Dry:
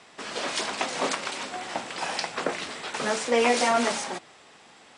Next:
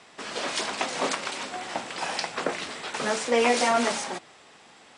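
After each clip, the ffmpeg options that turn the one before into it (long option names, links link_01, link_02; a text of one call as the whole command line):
ffmpeg -i in.wav -af anull out.wav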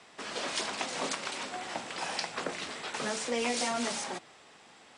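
ffmpeg -i in.wav -filter_complex "[0:a]acrossover=split=230|3000[link_01][link_02][link_03];[link_02]acompressor=threshold=-30dB:ratio=3[link_04];[link_01][link_04][link_03]amix=inputs=3:normalize=0,volume=-3.5dB" out.wav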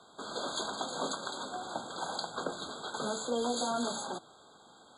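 ffmpeg -i in.wav -af "afftfilt=real='re*eq(mod(floor(b*sr/1024/1600),2),0)':imag='im*eq(mod(floor(b*sr/1024/1600),2),0)':win_size=1024:overlap=0.75" out.wav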